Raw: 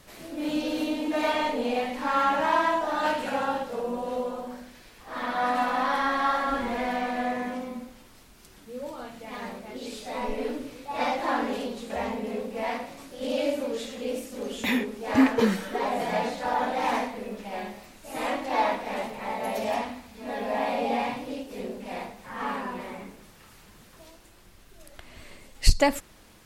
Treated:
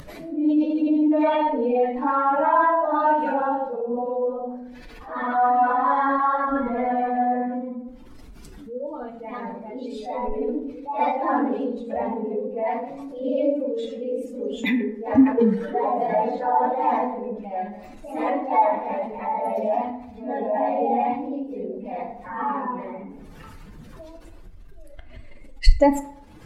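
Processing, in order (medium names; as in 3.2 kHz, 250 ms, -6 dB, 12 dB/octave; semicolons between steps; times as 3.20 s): spectral contrast enhancement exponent 1.9; FDN reverb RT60 0.73 s, low-frequency decay 0.75×, high-frequency decay 0.45×, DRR 6.5 dB; upward compressor, threshold -38 dBFS; trim +4 dB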